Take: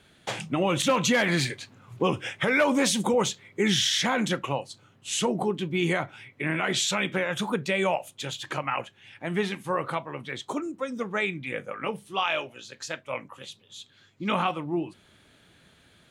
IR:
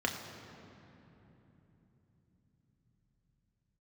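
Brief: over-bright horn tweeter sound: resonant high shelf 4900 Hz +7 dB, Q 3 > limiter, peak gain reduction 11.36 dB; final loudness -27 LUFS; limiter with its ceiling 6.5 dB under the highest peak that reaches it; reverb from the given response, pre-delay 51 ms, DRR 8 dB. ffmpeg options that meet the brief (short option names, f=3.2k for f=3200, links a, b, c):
-filter_complex "[0:a]alimiter=limit=-19.5dB:level=0:latency=1,asplit=2[a][b];[1:a]atrim=start_sample=2205,adelay=51[c];[b][c]afir=irnorm=-1:irlink=0,volume=-15dB[d];[a][d]amix=inputs=2:normalize=0,highshelf=f=4.9k:t=q:w=3:g=7,volume=4.5dB,alimiter=limit=-16dB:level=0:latency=1"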